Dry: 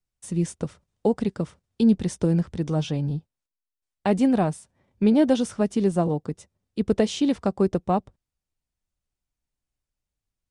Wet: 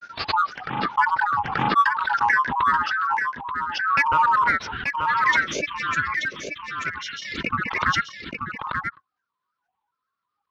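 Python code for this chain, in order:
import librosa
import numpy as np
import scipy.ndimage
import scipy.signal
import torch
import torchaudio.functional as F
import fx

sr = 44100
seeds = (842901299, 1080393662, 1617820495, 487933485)

p1 = fx.band_swap(x, sr, width_hz=1000)
p2 = scipy.signal.sosfilt(scipy.signal.butter(2, 84.0, 'highpass', fs=sr, output='sos'), p1)
p3 = fx.spec_box(p2, sr, start_s=4.7, length_s=2.94, low_hz=480.0, high_hz=1500.0, gain_db=-22)
p4 = scipy.signal.sosfilt(scipy.signal.butter(12, 4500.0, 'lowpass', fs=sr, output='sos'), p3)
p5 = fx.low_shelf(p4, sr, hz=340.0, db=7.0)
p6 = np.clip(p5, -10.0 ** (-16.5 / 20.0), 10.0 ** (-16.5 / 20.0))
p7 = p5 + (p6 * 10.0 ** (-8.0 / 20.0))
p8 = fx.granulator(p7, sr, seeds[0], grain_ms=100.0, per_s=20.0, spray_ms=100.0, spread_st=7)
p9 = p8 + 10.0 ** (-6.0 / 20.0) * np.pad(p8, (int(883 * sr / 1000.0), 0))[:len(p8)]
p10 = fx.pre_swell(p9, sr, db_per_s=46.0)
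y = p10 * 10.0 ** (-1.0 / 20.0)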